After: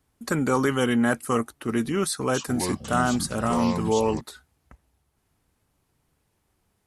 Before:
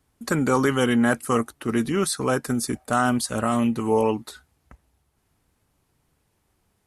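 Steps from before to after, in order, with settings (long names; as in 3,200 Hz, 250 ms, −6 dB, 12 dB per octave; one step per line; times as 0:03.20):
0:02.09–0:04.21: delay with pitch and tempo change per echo 252 ms, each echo −6 semitones, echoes 3, each echo −6 dB
level −2 dB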